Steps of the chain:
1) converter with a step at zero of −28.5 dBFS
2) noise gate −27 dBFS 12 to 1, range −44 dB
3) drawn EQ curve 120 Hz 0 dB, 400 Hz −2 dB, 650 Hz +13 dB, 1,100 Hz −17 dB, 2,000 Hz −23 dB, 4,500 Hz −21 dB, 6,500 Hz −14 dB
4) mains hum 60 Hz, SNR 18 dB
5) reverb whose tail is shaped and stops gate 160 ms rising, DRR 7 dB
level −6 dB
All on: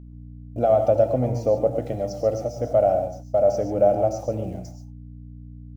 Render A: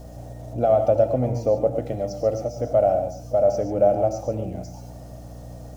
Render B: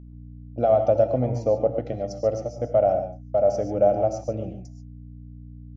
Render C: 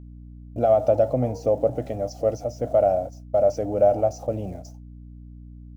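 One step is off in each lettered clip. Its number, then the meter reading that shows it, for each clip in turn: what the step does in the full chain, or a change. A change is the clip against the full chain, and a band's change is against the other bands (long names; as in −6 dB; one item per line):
2, change in momentary loudness spread +8 LU
1, distortion level −14 dB
5, change in momentary loudness spread −2 LU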